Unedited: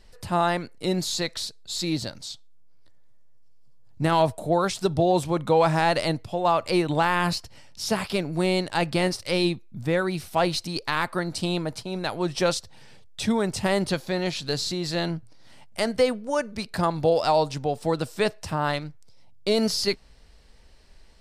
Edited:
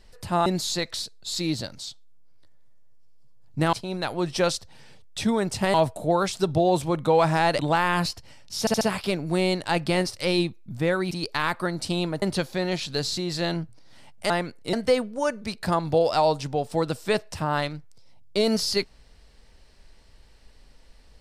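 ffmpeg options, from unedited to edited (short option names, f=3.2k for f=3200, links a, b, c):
-filter_complex "[0:a]asplit=12[a][b][c][d][e][f][g][h][i][j][k][l];[a]atrim=end=0.462[m];[b]atrim=start=0.888:end=4.162[n];[c]atrim=start=11.748:end=13.762[o];[d]atrim=start=4.158:end=6.012[p];[e]atrim=start=6.858:end=7.942[q];[f]atrim=start=7.868:end=7.942[r];[g]atrim=start=7.868:end=7.942[s];[h]atrim=start=7.868:end=10.172[t];[i]atrim=start=10.638:end=11.752[u];[j]atrim=start=13.758:end=15.842[v];[k]atrim=start=0.458:end=0.892[w];[l]atrim=start=15.838[x];[m][n]acrossfade=d=0.004:c1=hsin:c2=hsin[y];[y][o]acrossfade=d=0.004:c1=hsin:c2=hsin[z];[z][p]acrossfade=d=0.004:c1=hsin:c2=hsin[aa];[aa][q]acrossfade=d=0.004:c1=hsin:c2=hsin[ab];[ab][r]acrossfade=d=0.004:c1=hsin:c2=hsin[ac];[ac][s]acrossfade=d=0.004:c1=hsin:c2=hsin[ad];[ad][t]acrossfade=d=0.004:c1=hsin:c2=hsin[ae];[ae][u]acrossfade=d=0.004:c1=hsin:c2=hsin[af];[af][v]acrossfade=d=0.004:c1=hsin:c2=hsin[ag];[ag][w]acrossfade=d=0.004:c1=hsin:c2=hsin[ah];[ah][x]acrossfade=d=0.004:c1=hsin:c2=hsin"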